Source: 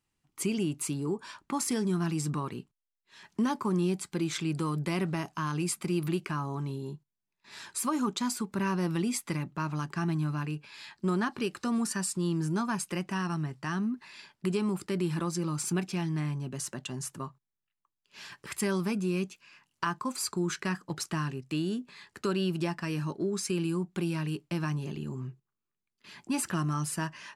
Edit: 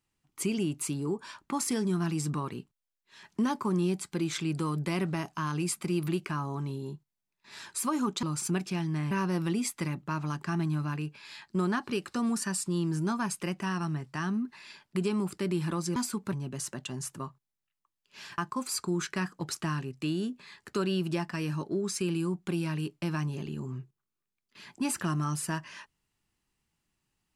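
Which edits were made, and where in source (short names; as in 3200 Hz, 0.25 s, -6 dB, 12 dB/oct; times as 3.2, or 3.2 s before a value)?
8.23–8.6 swap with 15.45–16.33
18.38–19.87 cut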